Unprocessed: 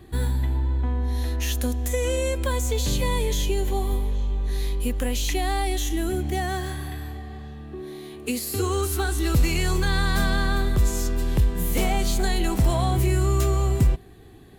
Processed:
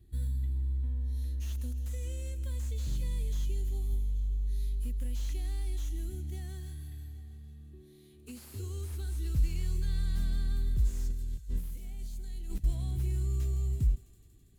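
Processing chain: high shelf 4900 Hz +7 dB; 11.1–12.64 negative-ratio compressor -26 dBFS, ratio -0.5; passive tone stack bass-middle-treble 10-0-1; thinning echo 0.165 s, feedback 75%, high-pass 480 Hz, level -16 dB; slew limiter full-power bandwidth 21 Hz

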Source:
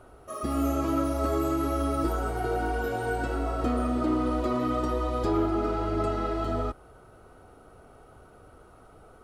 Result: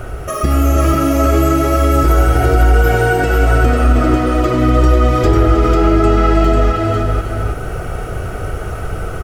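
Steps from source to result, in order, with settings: echo 0.314 s -10 dB; compressor 2.5:1, threshold -43 dBFS, peak gain reduction 14.5 dB; bell 520 Hz -7.5 dB 2.4 oct; AGC gain up to 3 dB; fifteen-band EQ 250 Hz -8 dB, 1000 Hz -10 dB, 4000 Hz -10 dB, 10000 Hz -10 dB; echo 0.496 s -3.5 dB; maximiser +31.5 dB; gain -1 dB

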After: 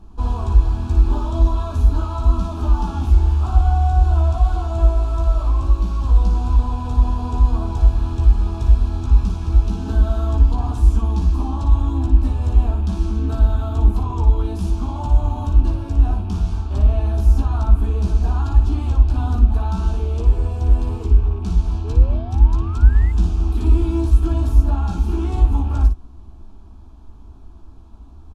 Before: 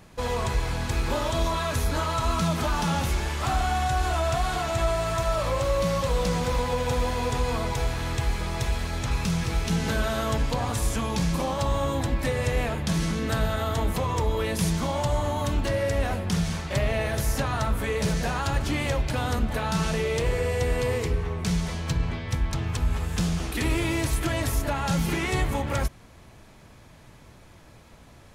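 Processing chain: rattling part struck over -28 dBFS, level -29 dBFS; in parallel at -1 dB: vocal rider; on the sum: fixed phaser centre 530 Hz, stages 6; on a send: early reflections 15 ms -5 dB, 57 ms -7 dB; on the sum: painted sound rise, 21.84–23.12, 410–2100 Hz -31 dBFS; RIAA curve playback; gain -8 dB

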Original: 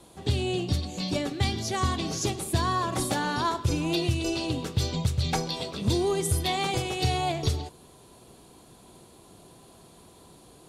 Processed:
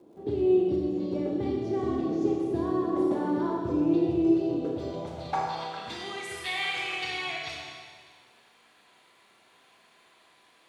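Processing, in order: band-pass sweep 360 Hz -> 2000 Hz, 4.47–6; crackle 88/s -64 dBFS; Schroeder reverb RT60 1.7 s, combs from 27 ms, DRR -2 dB; gain +3.5 dB

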